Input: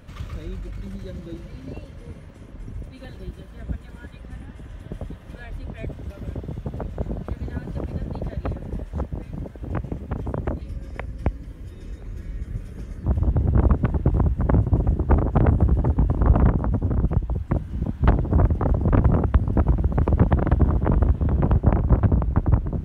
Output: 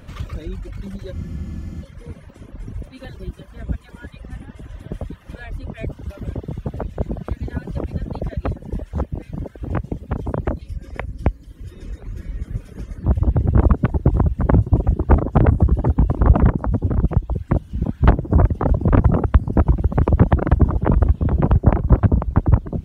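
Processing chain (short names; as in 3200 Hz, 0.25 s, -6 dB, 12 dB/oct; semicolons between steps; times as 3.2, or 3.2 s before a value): reverb removal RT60 0.89 s; spectral freeze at 1.15, 0.68 s; gain +5 dB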